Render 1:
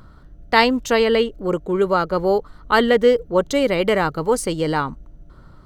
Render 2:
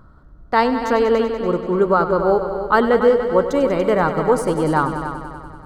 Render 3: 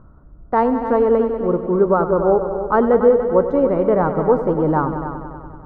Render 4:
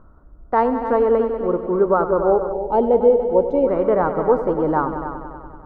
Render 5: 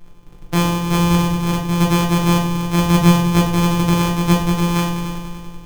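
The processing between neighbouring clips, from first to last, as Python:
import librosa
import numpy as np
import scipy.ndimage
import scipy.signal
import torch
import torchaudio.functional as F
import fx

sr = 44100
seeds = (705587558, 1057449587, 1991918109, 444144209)

y1 = fx.rider(x, sr, range_db=10, speed_s=2.0)
y1 = fx.high_shelf_res(y1, sr, hz=1800.0, db=-8.0, q=1.5)
y1 = fx.echo_heads(y1, sr, ms=96, heads='all three', feedback_pct=52, wet_db=-13)
y2 = scipy.signal.sosfilt(scipy.signal.butter(2, 1000.0, 'lowpass', fs=sr, output='sos'), y1)
y2 = F.gain(torch.from_numpy(y2), 1.5).numpy()
y3 = fx.spec_box(y2, sr, start_s=2.52, length_s=1.15, low_hz=970.0, high_hz=2100.0, gain_db=-18)
y3 = fx.peak_eq(y3, sr, hz=130.0, db=-8.5, octaves=1.6)
y4 = np.r_[np.sort(y3[:len(y3) // 256 * 256].reshape(-1, 256), axis=1).ravel(), y3[len(y3) // 256 * 256:]]
y4 = fx.room_shoebox(y4, sr, seeds[0], volume_m3=44.0, walls='mixed', distance_m=0.65)
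y4 = F.gain(torch.from_numpy(y4), -3.0).numpy()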